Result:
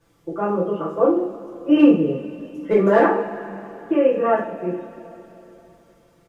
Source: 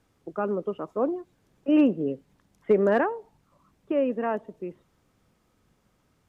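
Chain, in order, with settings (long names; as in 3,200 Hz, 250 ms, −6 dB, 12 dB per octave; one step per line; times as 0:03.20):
comb filter 5.9 ms, depth 52%
coupled-rooms reverb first 0.4 s, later 3.4 s, from −20 dB, DRR −10 dB
level −3 dB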